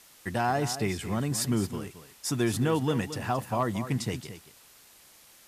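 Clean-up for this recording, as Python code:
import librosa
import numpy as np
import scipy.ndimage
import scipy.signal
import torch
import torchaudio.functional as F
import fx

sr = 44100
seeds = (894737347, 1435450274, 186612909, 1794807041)

y = fx.fix_declip(x, sr, threshold_db=-16.5)
y = fx.noise_reduce(y, sr, print_start_s=4.96, print_end_s=5.46, reduce_db=19.0)
y = fx.fix_echo_inverse(y, sr, delay_ms=223, level_db=-12.0)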